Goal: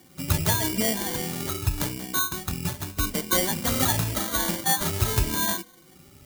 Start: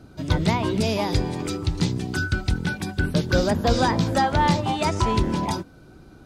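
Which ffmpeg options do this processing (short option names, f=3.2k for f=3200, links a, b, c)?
-af "afftfilt=real='re*pow(10,24/40*sin(2*PI*(1.8*log(max(b,1)*sr/1024/100)/log(2)-(0.86)*(pts-256)/sr)))':imag='im*pow(10,24/40*sin(2*PI*(1.8*log(max(b,1)*sr/1024/100)/log(2)-(0.86)*(pts-256)/sr)))':win_size=1024:overlap=0.75,acrusher=samples=17:mix=1:aa=0.000001,crystalizer=i=3.5:c=0,volume=-11dB"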